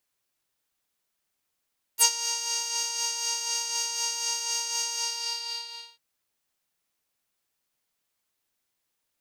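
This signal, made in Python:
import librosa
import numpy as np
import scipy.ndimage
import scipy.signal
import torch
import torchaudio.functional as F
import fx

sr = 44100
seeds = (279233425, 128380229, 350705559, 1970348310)

y = fx.sub_patch_tremolo(sr, seeds[0], note=82, wave='square', wave2='saw', interval_st=0, detune_cents=13, level2_db=-2.5, sub_db=-3.5, noise_db=-29.0, kind='bandpass', cutoff_hz=3900.0, q=3.7, env_oct=2.0, env_decay_s=0.06, env_sustain_pct=30, attack_ms=35.0, decay_s=0.08, sustain_db=-13, release_s=1.05, note_s=2.95, lfo_hz=4.0, tremolo_db=5)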